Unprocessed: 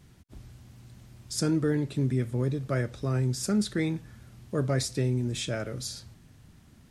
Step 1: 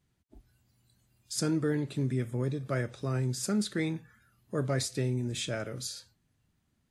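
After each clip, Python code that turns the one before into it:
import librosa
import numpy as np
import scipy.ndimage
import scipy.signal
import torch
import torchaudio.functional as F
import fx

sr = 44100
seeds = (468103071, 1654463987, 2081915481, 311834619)

y = fx.noise_reduce_blind(x, sr, reduce_db=16)
y = fx.low_shelf(y, sr, hz=470.0, db=-3.0)
y = fx.notch(y, sr, hz=5500.0, q=18.0)
y = y * 10.0 ** (-1.0 / 20.0)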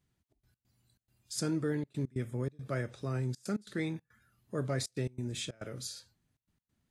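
y = fx.step_gate(x, sr, bpm=139, pattern='xxx.x.xxx.xxxx', floor_db=-24.0, edge_ms=4.5)
y = y * 10.0 ** (-3.5 / 20.0)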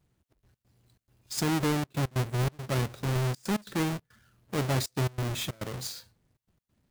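y = fx.halfwave_hold(x, sr)
y = y * 10.0 ** (1.5 / 20.0)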